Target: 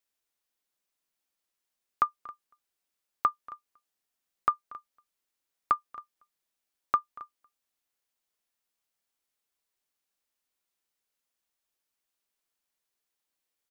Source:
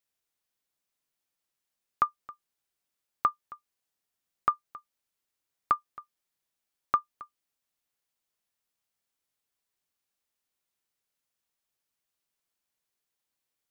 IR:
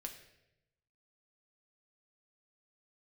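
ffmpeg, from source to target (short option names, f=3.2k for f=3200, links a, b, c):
-af "equalizer=f=120:t=o:w=0.75:g=-10,aecho=1:1:235:0.0794"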